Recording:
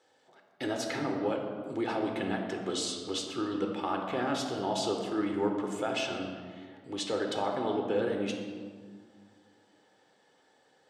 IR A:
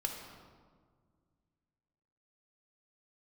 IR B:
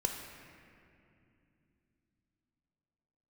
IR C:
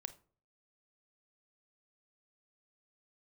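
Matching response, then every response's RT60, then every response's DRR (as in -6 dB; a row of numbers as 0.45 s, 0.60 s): A; 1.8 s, 2.7 s, 0.45 s; 1.5 dB, 2.0 dB, 11.0 dB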